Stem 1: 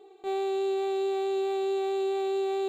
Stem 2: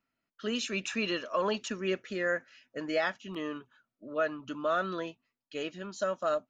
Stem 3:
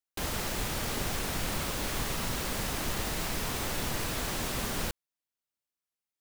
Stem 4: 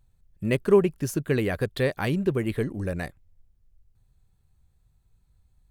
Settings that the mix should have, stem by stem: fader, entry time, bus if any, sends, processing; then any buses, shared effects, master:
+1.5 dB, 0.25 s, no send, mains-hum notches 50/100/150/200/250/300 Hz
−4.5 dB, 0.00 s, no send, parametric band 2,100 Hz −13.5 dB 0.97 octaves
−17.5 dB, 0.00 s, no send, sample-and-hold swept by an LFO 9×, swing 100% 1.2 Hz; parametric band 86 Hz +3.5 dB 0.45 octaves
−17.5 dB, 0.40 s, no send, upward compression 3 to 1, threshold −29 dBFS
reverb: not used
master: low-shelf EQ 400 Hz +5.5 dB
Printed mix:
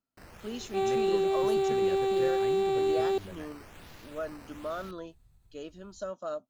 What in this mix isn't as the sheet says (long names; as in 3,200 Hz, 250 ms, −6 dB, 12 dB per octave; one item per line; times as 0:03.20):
stem 1: entry 0.25 s → 0.50 s
master: missing low-shelf EQ 400 Hz +5.5 dB